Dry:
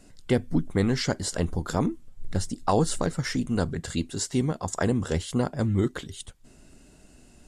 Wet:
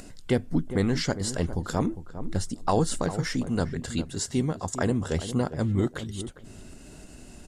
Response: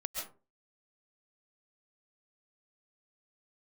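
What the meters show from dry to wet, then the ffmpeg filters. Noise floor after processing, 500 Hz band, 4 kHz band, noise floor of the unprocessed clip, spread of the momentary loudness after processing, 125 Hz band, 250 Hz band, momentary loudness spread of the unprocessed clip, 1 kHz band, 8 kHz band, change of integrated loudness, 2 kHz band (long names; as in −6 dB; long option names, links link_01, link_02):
−47 dBFS, −1.0 dB, −1.0 dB, −54 dBFS, 21 LU, −0.5 dB, −0.5 dB, 8 LU, −1.0 dB, −1.0 dB, −1.0 dB, −1.0 dB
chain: -filter_complex "[0:a]acompressor=mode=upward:threshold=-35dB:ratio=2.5,asplit=2[link_01][link_02];[link_02]adelay=404,lowpass=frequency=1000:poles=1,volume=-11dB,asplit=2[link_03][link_04];[link_04]adelay=404,lowpass=frequency=1000:poles=1,volume=0.16[link_05];[link_03][link_05]amix=inputs=2:normalize=0[link_06];[link_01][link_06]amix=inputs=2:normalize=0,volume=-1dB"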